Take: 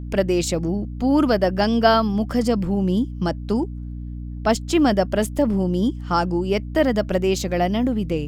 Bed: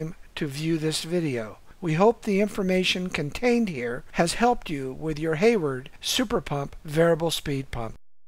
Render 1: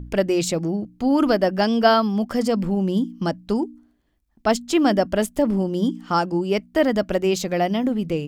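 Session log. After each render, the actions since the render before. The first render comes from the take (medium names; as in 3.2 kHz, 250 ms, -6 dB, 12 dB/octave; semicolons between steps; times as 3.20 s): de-hum 60 Hz, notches 5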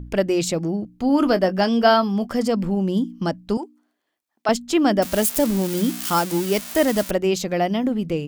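1.07–2.31 s: doubling 21 ms -12 dB; 3.57–4.49 s: high-pass 530 Hz; 5.02–7.11 s: zero-crossing glitches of -15.5 dBFS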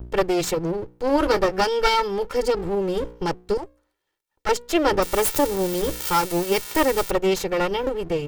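comb filter that takes the minimum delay 2.2 ms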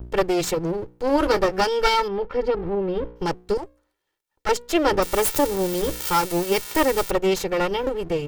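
2.08–3.16 s: distance through air 320 m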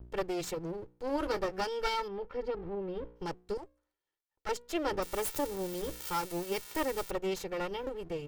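trim -13 dB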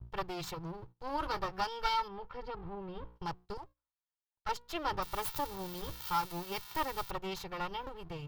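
gate -51 dBFS, range -14 dB; graphic EQ 125/250/500/1000/2000/4000/8000 Hz +7/-8/-10/+7/-4/+4/-9 dB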